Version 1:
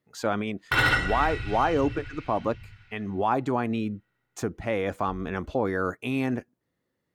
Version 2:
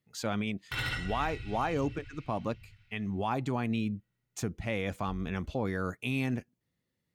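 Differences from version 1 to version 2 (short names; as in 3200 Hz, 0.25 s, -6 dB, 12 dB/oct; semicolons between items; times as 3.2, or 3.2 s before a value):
background -8.0 dB; master: add band shelf 680 Hz -8 dB 3 oct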